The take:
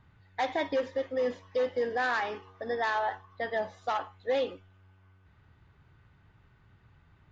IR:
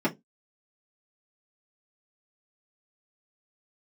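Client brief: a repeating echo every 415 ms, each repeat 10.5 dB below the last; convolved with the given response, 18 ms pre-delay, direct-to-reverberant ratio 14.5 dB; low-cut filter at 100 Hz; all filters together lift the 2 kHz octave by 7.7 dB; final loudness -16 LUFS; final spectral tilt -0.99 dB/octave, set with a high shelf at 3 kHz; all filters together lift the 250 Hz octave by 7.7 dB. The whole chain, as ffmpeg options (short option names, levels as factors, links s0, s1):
-filter_complex "[0:a]highpass=100,equalizer=f=250:t=o:g=8.5,equalizer=f=2000:t=o:g=7,highshelf=f=3000:g=7.5,aecho=1:1:415|830|1245:0.299|0.0896|0.0269,asplit=2[s0][s1];[1:a]atrim=start_sample=2205,adelay=18[s2];[s1][s2]afir=irnorm=-1:irlink=0,volume=0.0531[s3];[s0][s3]amix=inputs=2:normalize=0,volume=3.76"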